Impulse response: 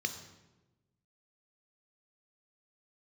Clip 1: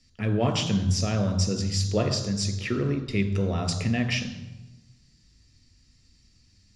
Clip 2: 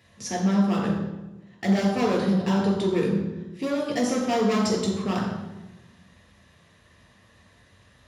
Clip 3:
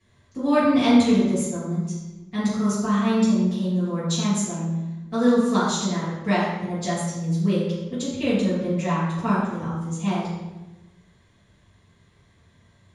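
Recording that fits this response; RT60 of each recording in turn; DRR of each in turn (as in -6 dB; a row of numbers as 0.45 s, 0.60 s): 1; 1.1 s, 1.1 s, 1.1 s; 7.0 dB, -1.0 dB, -11.0 dB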